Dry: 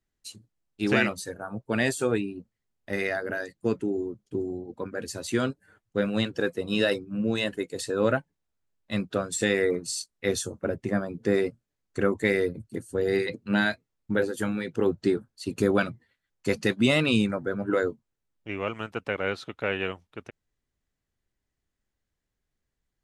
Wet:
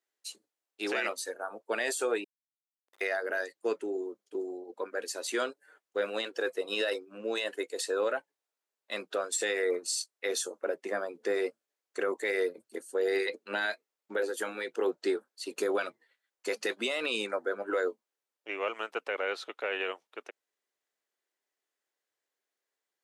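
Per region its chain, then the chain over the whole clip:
2.24–3.01 band-pass 3600 Hz, Q 13 + Schmitt trigger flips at -47.5 dBFS
whole clip: HPF 400 Hz 24 dB/oct; limiter -20.5 dBFS

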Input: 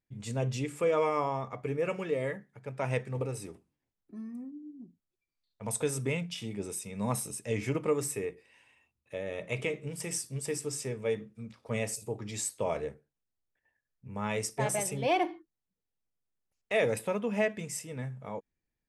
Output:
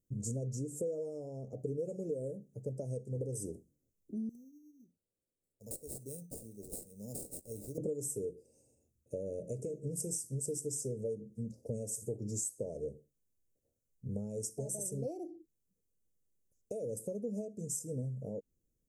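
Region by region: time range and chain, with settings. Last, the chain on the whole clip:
4.29–7.78 pre-emphasis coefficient 0.9 + sample-rate reducer 6100 Hz
whole clip: dynamic EQ 8800 Hz, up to +3 dB, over -51 dBFS, Q 0.72; compressor 10:1, threshold -40 dBFS; elliptic band-stop 530–6400 Hz, stop band 40 dB; gain +6.5 dB

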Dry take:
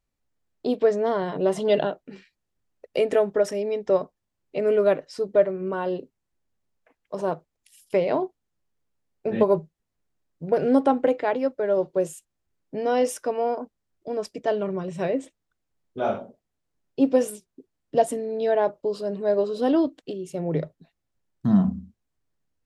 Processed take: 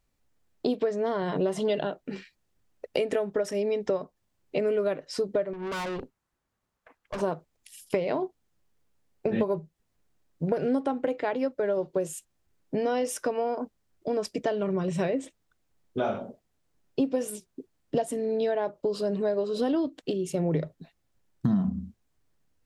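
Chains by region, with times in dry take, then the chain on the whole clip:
5.53–7.21 bell 1200 Hz +8 dB 1.2 oct + tube stage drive 35 dB, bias 0.7
whole clip: compressor 6:1, threshold -28 dBFS; dynamic EQ 660 Hz, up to -3 dB, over -39 dBFS, Q 0.7; gain +6 dB

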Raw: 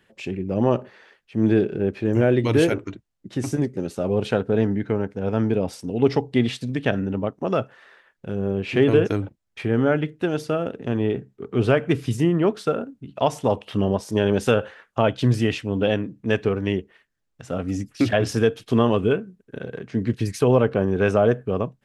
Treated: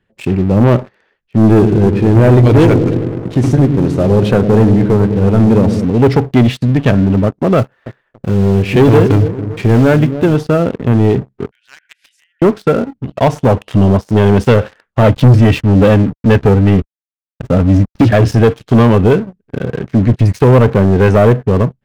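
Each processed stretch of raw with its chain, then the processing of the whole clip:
1.5–5.85 CVSD 64 kbps + dark delay 0.104 s, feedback 71%, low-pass 470 Hz, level -8 dB
7.58–10.35 block floating point 5-bit + dark delay 0.281 s, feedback 38%, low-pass 510 Hz, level -13 dB
11.51–12.42 compressor 5:1, threshold -27 dBFS + brick-wall FIR high-pass 1400 Hz + Doppler distortion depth 0.18 ms
15.02–18.02 sample leveller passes 1 + backlash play -33 dBFS + notch comb 360 Hz
whole clip: LPF 2900 Hz 6 dB/oct; low shelf 160 Hz +11.5 dB; sample leveller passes 3

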